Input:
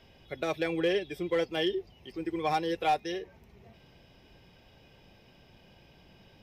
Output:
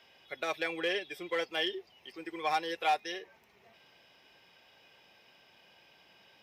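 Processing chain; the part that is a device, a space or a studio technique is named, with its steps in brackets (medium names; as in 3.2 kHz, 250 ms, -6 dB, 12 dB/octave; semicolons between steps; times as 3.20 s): filter by subtraction (in parallel: low-pass 1.4 kHz 12 dB/octave + polarity flip)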